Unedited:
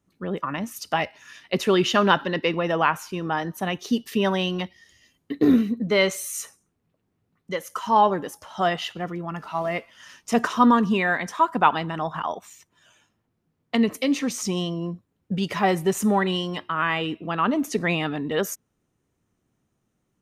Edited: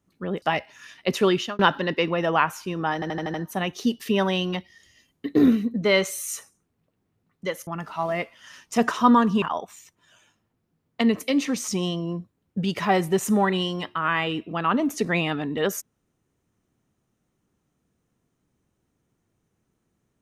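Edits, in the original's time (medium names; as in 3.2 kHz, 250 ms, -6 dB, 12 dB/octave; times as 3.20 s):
0.42–0.88 s: delete
1.73–2.05 s: fade out
3.40 s: stutter 0.08 s, 6 plays
7.73–9.23 s: delete
10.98–12.16 s: delete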